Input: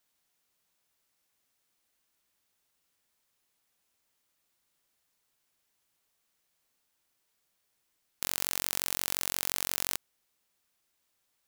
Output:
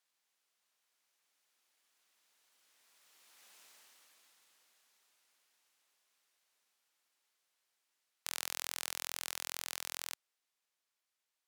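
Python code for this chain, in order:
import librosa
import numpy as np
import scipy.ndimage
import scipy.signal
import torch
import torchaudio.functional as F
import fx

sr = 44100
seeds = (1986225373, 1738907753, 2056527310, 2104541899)

y = fx.doppler_pass(x, sr, speed_mps=28, closest_m=8.7, pass_at_s=3.59)
y = fx.weighting(y, sr, curve='A')
y = y * 10.0 ** (18.0 / 20.0)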